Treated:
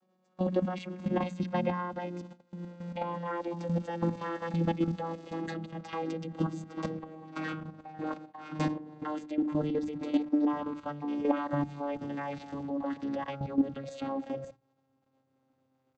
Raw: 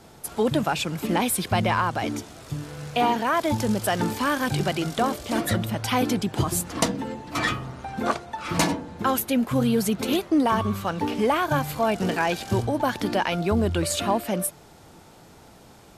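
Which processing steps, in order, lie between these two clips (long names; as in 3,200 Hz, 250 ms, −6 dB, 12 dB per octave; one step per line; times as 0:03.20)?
vocoder with a gliding carrier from F#3, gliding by −6 semitones
high-frequency loss of the air 53 metres
output level in coarse steps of 11 dB
comb filter 3.7 ms, depth 67%
noise gate −47 dBFS, range −14 dB
mains-hum notches 60/120/180/240/300 Hz
level −2.5 dB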